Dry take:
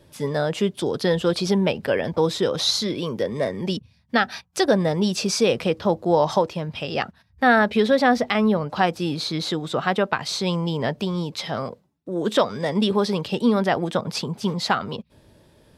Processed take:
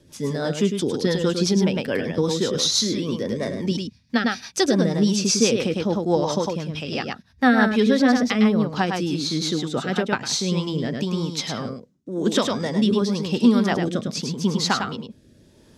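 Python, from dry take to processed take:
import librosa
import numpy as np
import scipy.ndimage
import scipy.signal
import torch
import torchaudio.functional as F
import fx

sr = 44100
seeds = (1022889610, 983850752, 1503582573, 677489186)

p1 = fx.graphic_eq_15(x, sr, hz=(250, 630, 6300), db=(6, -4, 9))
p2 = p1 + fx.echo_single(p1, sr, ms=104, db=-5.0, dry=0)
p3 = fx.rotary_switch(p2, sr, hz=6.0, then_hz=0.9, switch_at_s=10.0)
y = fx.notch(p3, sr, hz=1100.0, q=9.4, at=(9.75, 10.4))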